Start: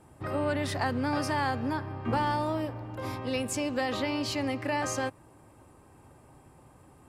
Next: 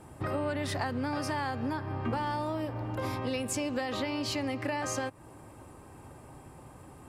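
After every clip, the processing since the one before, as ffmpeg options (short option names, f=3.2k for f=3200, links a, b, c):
-af "acompressor=threshold=-36dB:ratio=4,volume=5.5dB"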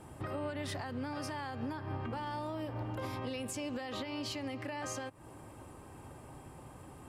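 -af "equalizer=f=3.1k:t=o:w=0.26:g=3.5,alimiter=level_in=5dB:limit=-24dB:level=0:latency=1:release=232,volume=-5dB,volume=-1dB"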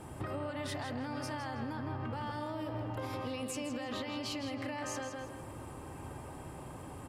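-filter_complex "[0:a]asplit=2[a][b];[b]adelay=162,lowpass=f=4.6k:p=1,volume=-5dB,asplit=2[c][d];[d]adelay=162,lowpass=f=4.6k:p=1,volume=0.36,asplit=2[e][f];[f]adelay=162,lowpass=f=4.6k:p=1,volume=0.36,asplit=2[g][h];[h]adelay=162,lowpass=f=4.6k:p=1,volume=0.36[i];[a][c][e][g][i]amix=inputs=5:normalize=0,acompressor=threshold=-39dB:ratio=6,volume=4dB"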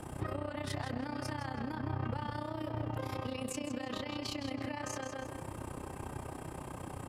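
-filter_complex "[0:a]tremolo=f=31:d=0.788,acrossover=split=190[a][b];[b]acompressor=threshold=-42dB:ratio=6[c];[a][c]amix=inputs=2:normalize=0,volume=6dB"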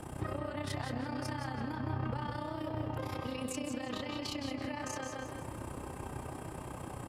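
-af "aecho=1:1:178:0.355"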